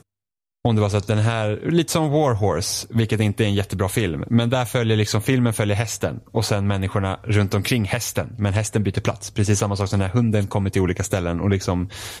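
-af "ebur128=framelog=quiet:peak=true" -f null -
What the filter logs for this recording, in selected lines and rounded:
Integrated loudness:
  I:         -21.3 LUFS
  Threshold: -31.4 LUFS
Loudness range:
  LRA:         1.6 LU
  Threshold: -41.3 LUFS
  LRA low:   -22.2 LUFS
  LRA high:  -20.6 LUFS
True peak:
  Peak:       -5.2 dBFS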